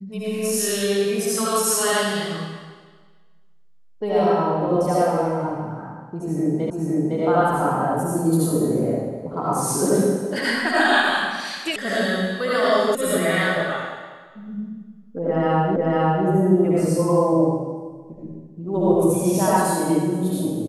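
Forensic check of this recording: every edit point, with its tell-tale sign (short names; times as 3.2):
6.7 repeat of the last 0.51 s
11.76 sound cut off
12.95 sound cut off
15.76 repeat of the last 0.5 s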